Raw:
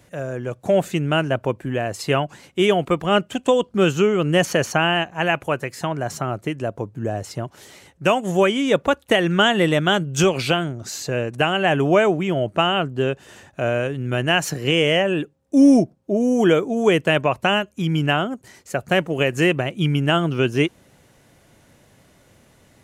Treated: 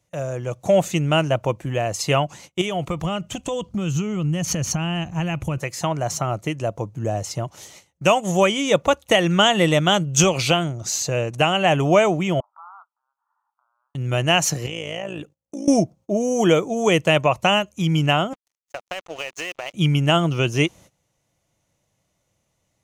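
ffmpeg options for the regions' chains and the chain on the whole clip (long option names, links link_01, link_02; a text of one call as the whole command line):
ffmpeg -i in.wav -filter_complex "[0:a]asettb=1/sr,asplit=3[link_01][link_02][link_03];[link_01]atrim=end=2.614[link_04];[link_02]atrim=start=2.61:end=5.58,asetpts=PTS-STARTPTS,afade=type=in:duration=0.004:curve=qsin,afade=type=out:start_time=2.966:duration=0.004:curve=qsin,asubboost=boost=8.5:cutoff=240,acompressor=threshold=-20dB:ratio=12:attack=3.2:release=140:knee=1:detection=peak[link_05];[link_03]atrim=start=5.576[link_06];[link_04][link_05]acrossfade=duration=0.004:curve1=hsin:curve2=qsin[link_07];[link_07][link_06]acrossfade=duration=0.004:curve1=qsin:curve2=hsin,asettb=1/sr,asplit=3[link_08][link_09][link_10];[link_08]atrim=end=12.404[link_11];[link_09]atrim=start=12.4:end=13.95,asetpts=PTS-STARTPTS,afade=type=in:duration=0.004:curve=qsin,afade=type=out:start_time=1.546:duration=0.004:curve=qsin,acompressor=threshold=-32dB:ratio=16:attack=3.2:release=140:knee=1:detection=peak,asuperpass=centerf=1100:order=8:qfactor=2,asplit=2[link_12][link_13];[link_13]adelay=38,volume=-11dB[link_14];[link_12][link_14]amix=inputs=2:normalize=0,atrim=end_sample=68355[link_15];[link_10]atrim=start=13.946[link_16];[link_11][link_15]acrossfade=duration=0.004:curve1=hsin:curve2=qsin[link_17];[link_17][link_16]acrossfade=duration=0.004:curve1=qsin:curve2=hsin,asettb=1/sr,asplit=3[link_18][link_19][link_20];[link_18]atrim=end=14.664[link_21];[link_19]atrim=start=14.66:end=15.68,asetpts=PTS-STARTPTS,afade=type=in:duration=0.004:curve=qsin,afade=type=out:start_time=1.016:duration=0.004:curve=qsin,acompressor=threshold=-24dB:ratio=5:attack=3.2:release=140:knee=1:detection=peak,tremolo=f=56:d=0.75[link_22];[link_20]atrim=start=15.676[link_23];[link_21][link_22]acrossfade=duration=0.004:curve1=hsin:curve2=qsin[link_24];[link_24][link_23]acrossfade=duration=0.004:curve1=qsin:curve2=hsin,asettb=1/sr,asplit=3[link_25][link_26][link_27];[link_25]atrim=end=18.334[link_28];[link_26]atrim=start=18.33:end=19.74,asetpts=PTS-STARTPTS,afade=type=in:duration=0.004:curve=qsin,afade=type=out:start_time=1.406:duration=0.004:curve=qsin,highpass=630,lowpass=5900,acompressor=threshold=-24dB:ratio=10:attack=3.2:release=140:knee=1:detection=peak,aeval=exprs='sgn(val(0))*max(abs(val(0))-0.00891,0)':channel_layout=same[link_29];[link_27]atrim=start=19.736[link_30];[link_28][link_29]acrossfade=duration=0.004:curve1=hsin:curve2=qsin[link_31];[link_31][link_30]acrossfade=duration=0.004:curve1=qsin:curve2=hsin,agate=range=-19dB:threshold=-44dB:ratio=16:detection=peak,equalizer=frequency=250:width_type=o:width=0.33:gain=-9,equalizer=frequency=400:width_type=o:width=0.33:gain=-7,equalizer=frequency=1600:width_type=o:width=0.33:gain=-9,equalizer=frequency=6300:width_type=o:width=0.33:gain=8,volume=2.5dB" out.wav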